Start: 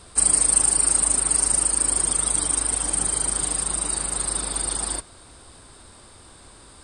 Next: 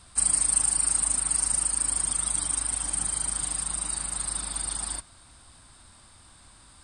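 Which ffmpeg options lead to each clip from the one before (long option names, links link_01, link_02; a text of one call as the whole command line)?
ffmpeg -i in.wav -af "equalizer=frequency=430:width_type=o:width=0.83:gain=-13,volume=-5dB" out.wav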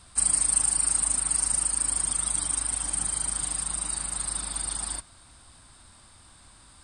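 ffmpeg -i in.wav -af "asoftclip=type=hard:threshold=-9.5dB" out.wav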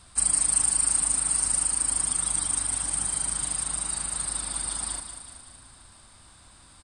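ffmpeg -i in.wav -af "aecho=1:1:188|376|564|752|940|1128|1316:0.355|0.202|0.115|0.0657|0.0375|0.0213|0.0122" out.wav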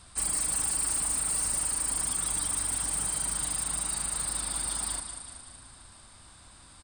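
ffmpeg -i in.wav -af "volume=25.5dB,asoftclip=hard,volume=-25.5dB" out.wav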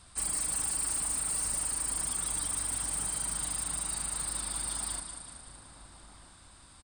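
ffmpeg -i in.wav -filter_complex "[0:a]asplit=2[link_01][link_02];[link_02]adelay=1283,volume=-11dB,highshelf=frequency=4000:gain=-28.9[link_03];[link_01][link_03]amix=inputs=2:normalize=0,volume=-3dB" out.wav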